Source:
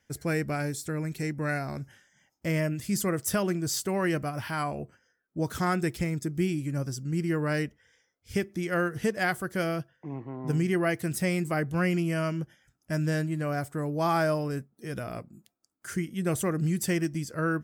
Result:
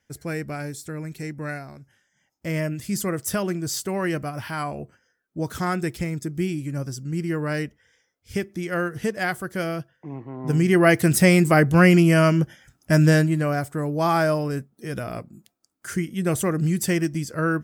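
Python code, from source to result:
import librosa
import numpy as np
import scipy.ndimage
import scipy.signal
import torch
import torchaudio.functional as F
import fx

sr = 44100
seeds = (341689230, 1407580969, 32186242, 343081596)

y = fx.gain(x, sr, db=fx.line((1.49, -1.0), (1.8, -9.0), (2.58, 2.0), (10.29, 2.0), (10.95, 12.0), (13.08, 12.0), (13.63, 5.0)))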